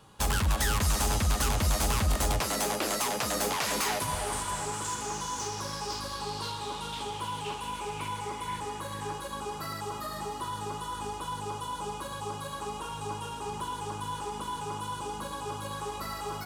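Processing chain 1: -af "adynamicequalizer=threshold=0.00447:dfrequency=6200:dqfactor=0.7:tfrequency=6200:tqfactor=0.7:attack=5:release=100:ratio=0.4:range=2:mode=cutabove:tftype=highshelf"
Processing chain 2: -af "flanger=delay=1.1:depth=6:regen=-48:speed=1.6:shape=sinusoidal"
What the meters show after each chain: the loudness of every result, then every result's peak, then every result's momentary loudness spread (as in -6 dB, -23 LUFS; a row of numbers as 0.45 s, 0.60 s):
-32.5 LUFS, -36.0 LUFS; -18.5 dBFS, -20.5 dBFS; 9 LU, 10 LU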